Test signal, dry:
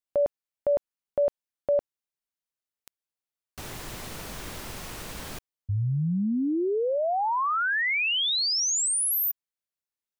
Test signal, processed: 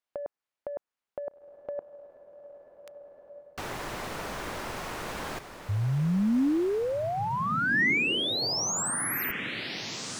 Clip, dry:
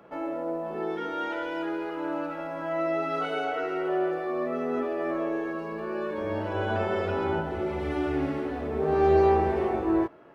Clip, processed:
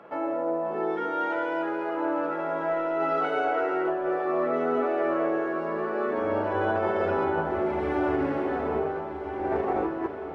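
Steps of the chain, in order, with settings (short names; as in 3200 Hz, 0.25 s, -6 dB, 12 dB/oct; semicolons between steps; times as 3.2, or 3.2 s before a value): overdrive pedal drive 12 dB, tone 1600 Hz, clips at -10.5 dBFS; dynamic EQ 3200 Hz, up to -6 dB, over -45 dBFS, Q 0.93; negative-ratio compressor -26 dBFS, ratio -0.5; diffused feedback echo 1.503 s, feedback 45%, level -9 dB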